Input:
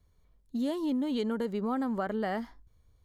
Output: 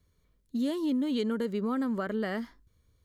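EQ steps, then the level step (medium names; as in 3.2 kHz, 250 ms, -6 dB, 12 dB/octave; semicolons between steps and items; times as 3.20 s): bass shelf 60 Hz -11.5 dB; peaking EQ 790 Hz -10.5 dB 0.61 oct; +2.5 dB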